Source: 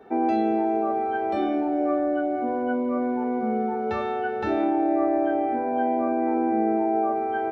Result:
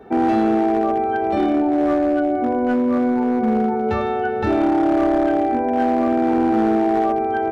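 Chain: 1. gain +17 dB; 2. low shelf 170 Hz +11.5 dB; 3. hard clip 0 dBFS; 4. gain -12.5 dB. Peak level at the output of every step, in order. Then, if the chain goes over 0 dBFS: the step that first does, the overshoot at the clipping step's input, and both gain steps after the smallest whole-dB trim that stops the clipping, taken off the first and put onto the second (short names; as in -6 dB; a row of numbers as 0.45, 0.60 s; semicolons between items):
+6.0, +7.5, 0.0, -12.5 dBFS; step 1, 7.5 dB; step 1 +9 dB, step 4 -4.5 dB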